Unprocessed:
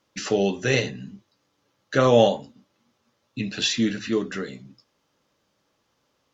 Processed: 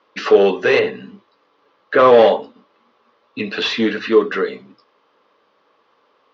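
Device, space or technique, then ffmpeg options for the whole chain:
overdrive pedal into a guitar cabinet: -filter_complex "[0:a]asplit=2[s0][s1];[s1]highpass=f=720:p=1,volume=8.91,asoftclip=type=tanh:threshold=0.631[s2];[s0][s2]amix=inputs=2:normalize=0,lowpass=f=1900:p=1,volume=0.501,highpass=99,equalizer=f=140:t=q:w=4:g=-10,equalizer=f=440:t=q:w=4:g=8,equalizer=f=1100:t=q:w=4:g=7,lowpass=f=4600:w=0.5412,lowpass=f=4600:w=1.3066,asettb=1/sr,asplit=3[s3][s4][s5];[s3]atrim=end=0.794[s6];[s4]atrim=start=0.79:end=1.99,asetpts=PTS-STARTPTS,afade=t=in:d=0.004:c=qsin,afade=t=out:st=1.196:d=0.004:c=qsin,acrossover=split=3100[s7][s8];[s8]acompressor=threshold=0.00355:ratio=4:attack=1:release=60[s9];[s7][s9]amix=inputs=2:normalize=0[s10];[s5]atrim=start=1.986[s11];[s6][s10]acrossfade=d=0.004:c1=hsin:c2=qsin[s12];[s12][s11]acrossfade=d=0.004:c1=qsin:c2=hsin"

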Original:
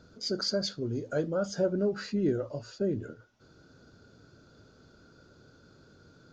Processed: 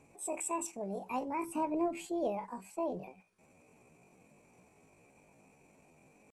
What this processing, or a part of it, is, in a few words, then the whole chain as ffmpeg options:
chipmunk voice: -filter_complex "[0:a]asettb=1/sr,asplit=3[s0][s1][s2];[s0]atrim=end=0.934[s3];[s1]atrim=start=0.93:end=2.09,asetpts=PTS-STARTPTS,afade=t=in:d=0.004:c=qsin,afade=t=out:st=1.156:d=0.004:c=qsin,asubboost=boost=8:cutoff=220[s4];[s2]atrim=start=2.086[s5];[s3][s4]acrossfade=d=0.004:c1=hsin:c2=qsin[s6];[s6][s5]acrossfade=d=0.004:c1=qsin:c2=hsin,asetrate=74167,aresample=44100,atempo=0.594604,volume=0.501"

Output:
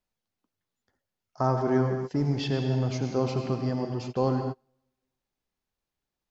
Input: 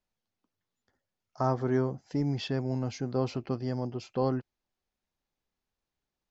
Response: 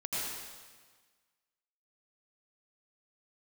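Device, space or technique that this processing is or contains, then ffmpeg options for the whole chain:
keyed gated reverb: -filter_complex "[0:a]asplit=3[s0][s1][s2];[1:a]atrim=start_sample=2205[s3];[s1][s3]afir=irnorm=-1:irlink=0[s4];[s2]apad=whole_len=278093[s5];[s4][s5]sidechaingate=range=0.0251:threshold=0.00447:ratio=16:detection=peak,volume=0.501[s6];[s0][s6]amix=inputs=2:normalize=0"

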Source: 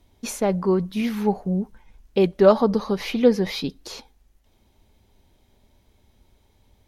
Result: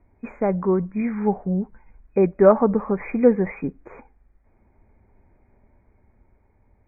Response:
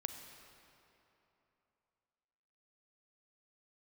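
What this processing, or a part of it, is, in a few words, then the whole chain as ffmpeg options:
action camera in a waterproof case: -af "afftfilt=real='re*(1-between(b*sr/4096,2500,6300))':imag='im*(1-between(b*sr/4096,2500,6300))':win_size=4096:overlap=0.75,lowpass=f=2300:w=0.5412,lowpass=f=2300:w=1.3066,dynaudnorm=f=380:g=9:m=1.58" -ar 44100 -c:a aac -b:a 96k

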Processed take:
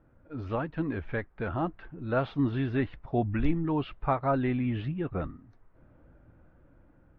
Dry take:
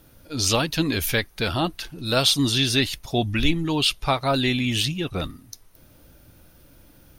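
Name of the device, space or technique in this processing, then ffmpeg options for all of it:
action camera in a waterproof case: -af "lowpass=f=1700:w=0.5412,lowpass=f=1700:w=1.3066,dynaudnorm=f=650:g=5:m=1.58,volume=0.398" -ar 44100 -c:a aac -b:a 48k

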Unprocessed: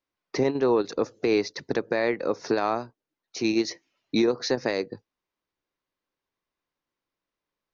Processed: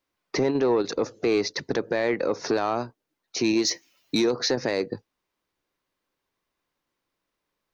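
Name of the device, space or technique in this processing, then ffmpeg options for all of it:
soft clipper into limiter: -filter_complex "[0:a]asettb=1/sr,asplit=3[s0][s1][s2];[s0]atrim=end=3.624[s3];[s1]atrim=start=3.62:end=4.31,asetpts=PTS-STARTPTS,afade=t=in:d=0.004:c=qsin,afade=t=out:st=0.686:d=0.004:c=qsin,aemphasis=mode=production:type=75fm[s4];[s2]atrim=start=4.306[s5];[s3][s4]acrossfade=d=0.004:c1=hsin:c2=qsin[s6];[s6][s5]acrossfade=d=0.004:c1=qsin:c2=hsin,asoftclip=type=tanh:threshold=0.211,alimiter=limit=0.0891:level=0:latency=1:release=46,volume=2"

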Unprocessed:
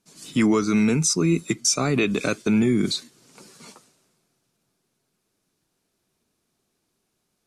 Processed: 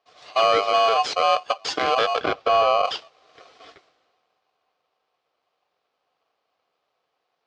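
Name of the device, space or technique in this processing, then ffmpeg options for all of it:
ring modulator pedal into a guitar cabinet: -filter_complex "[0:a]aeval=exprs='val(0)*sgn(sin(2*PI*900*n/s))':c=same,highpass=100,equalizer=f=120:t=q:w=4:g=-5,equalizer=f=210:t=q:w=4:g=-9,equalizer=f=440:t=q:w=4:g=6,equalizer=f=780:t=q:w=4:g=6,lowpass=f=4500:w=0.5412,lowpass=f=4500:w=1.3066,asettb=1/sr,asplit=3[s0][s1][s2];[s0]atrim=end=2.204[s3];[s1]atrim=start=2.2:end=2.85,asetpts=PTS-STARTPTS,afade=t=in:d=0.004:c=qsin,afade=t=out:st=0.646:d=0.004:c=qsin,aemphasis=mode=reproduction:type=bsi[s4];[s2]atrim=start=2.846[s5];[s3][s4]acrossfade=d=0.004:c1=hsin:c2=qsin[s6];[s6][s5]acrossfade=d=0.004:c1=qsin:c2=hsin,volume=0.891"

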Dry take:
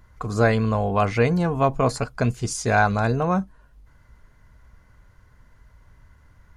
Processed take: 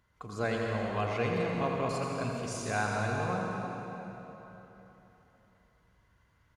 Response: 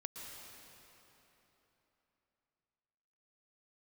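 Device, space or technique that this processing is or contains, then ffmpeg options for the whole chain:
PA in a hall: -filter_complex "[0:a]highpass=f=140:p=1,equalizer=f=3100:t=o:w=0.81:g=6,aecho=1:1:85:0.422[s0];[1:a]atrim=start_sample=2205[s1];[s0][s1]afir=irnorm=-1:irlink=0,volume=0.376"

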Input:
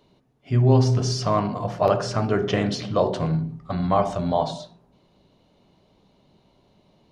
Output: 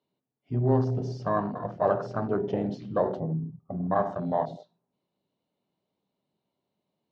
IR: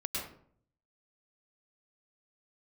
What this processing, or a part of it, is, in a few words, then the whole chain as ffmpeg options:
over-cleaned archive recording: -filter_complex "[0:a]asplit=3[s0][s1][s2];[s0]afade=t=out:st=3.19:d=0.02[s3];[s1]lowpass=f=1100:w=0.5412,lowpass=f=1100:w=1.3066,afade=t=in:st=3.19:d=0.02,afade=t=out:st=3.94:d=0.02[s4];[s2]afade=t=in:st=3.94:d=0.02[s5];[s3][s4][s5]amix=inputs=3:normalize=0,highpass=140,lowpass=5600,afwtdn=0.0501,volume=0.596"

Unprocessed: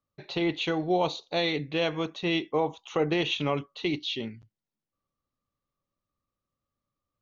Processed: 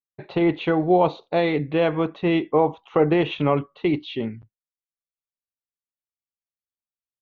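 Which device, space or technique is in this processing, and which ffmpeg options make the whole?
hearing-loss simulation: -af "lowpass=1700,agate=range=0.0224:threshold=0.00501:ratio=3:detection=peak,volume=2.51"

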